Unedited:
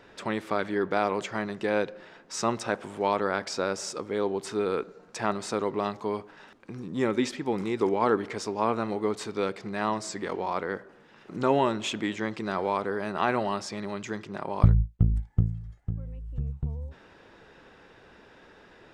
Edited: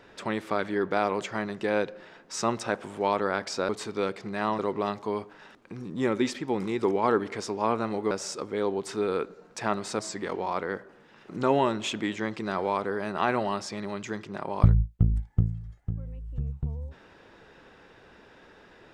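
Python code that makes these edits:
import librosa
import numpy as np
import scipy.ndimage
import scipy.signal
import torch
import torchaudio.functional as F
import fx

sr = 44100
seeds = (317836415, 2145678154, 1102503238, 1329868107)

y = fx.edit(x, sr, fx.swap(start_s=3.69, length_s=1.88, other_s=9.09, other_length_s=0.9), tone=tone)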